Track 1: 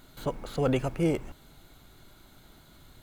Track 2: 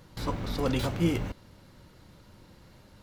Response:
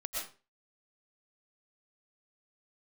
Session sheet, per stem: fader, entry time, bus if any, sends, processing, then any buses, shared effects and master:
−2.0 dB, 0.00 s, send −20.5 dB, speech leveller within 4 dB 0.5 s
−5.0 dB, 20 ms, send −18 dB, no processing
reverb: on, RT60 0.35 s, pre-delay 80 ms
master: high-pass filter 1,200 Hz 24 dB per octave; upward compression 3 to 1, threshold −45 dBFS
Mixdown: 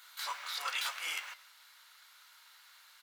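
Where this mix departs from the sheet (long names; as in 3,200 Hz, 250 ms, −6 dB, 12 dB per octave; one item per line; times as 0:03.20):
stem 2 −5.0 dB → +1.5 dB
master: missing upward compression 3 to 1, threshold −45 dBFS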